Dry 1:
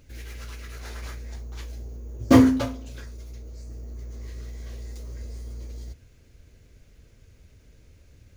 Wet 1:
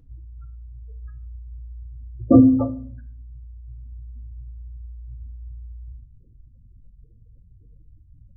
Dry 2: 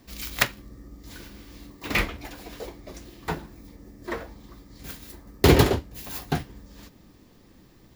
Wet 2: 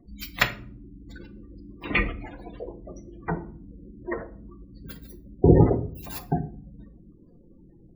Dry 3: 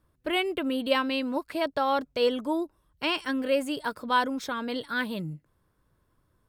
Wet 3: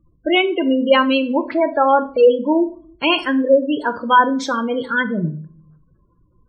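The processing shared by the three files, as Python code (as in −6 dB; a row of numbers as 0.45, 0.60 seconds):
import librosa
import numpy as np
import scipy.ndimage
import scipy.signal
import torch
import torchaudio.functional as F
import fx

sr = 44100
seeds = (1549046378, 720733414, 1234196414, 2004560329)

y = fx.spec_gate(x, sr, threshold_db=-15, keep='strong')
y = fx.room_shoebox(y, sr, seeds[0], volume_m3=450.0, walls='furnished', distance_m=0.78)
y = fx.vibrato(y, sr, rate_hz=9.8, depth_cents=11.0)
y = librosa.util.normalize(y) * 10.0 ** (-2 / 20.0)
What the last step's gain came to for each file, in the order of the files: +2.5, +1.0, +11.0 decibels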